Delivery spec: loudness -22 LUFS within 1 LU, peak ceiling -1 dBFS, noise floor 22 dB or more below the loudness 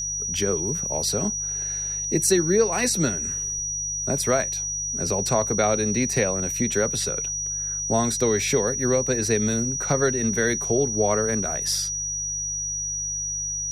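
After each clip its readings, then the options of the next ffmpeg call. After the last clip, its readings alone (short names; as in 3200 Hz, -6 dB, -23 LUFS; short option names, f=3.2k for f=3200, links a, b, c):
hum 50 Hz; harmonics up to 150 Hz; hum level -39 dBFS; steady tone 5800 Hz; tone level -26 dBFS; loudness -23.0 LUFS; peak -8.0 dBFS; loudness target -22.0 LUFS
-> -af "bandreject=f=50:t=h:w=4,bandreject=f=100:t=h:w=4,bandreject=f=150:t=h:w=4"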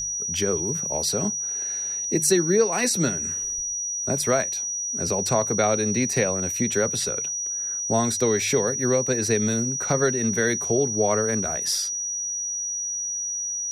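hum none; steady tone 5800 Hz; tone level -26 dBFS
-> -af "bandreject=f=5.8k:w=30"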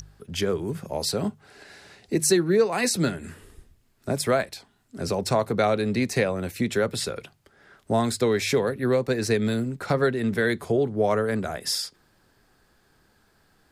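steady tone none; loudness -25.0 LUFS; peak -9.0 dBFS; loudness target -22.0 LUFS
-> -af "volume=3dB"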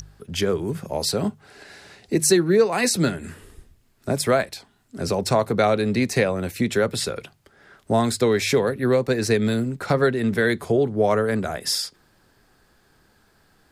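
loudness -22.0 LUFS; peak -6.0 dBFS; noise floor -61 dBFS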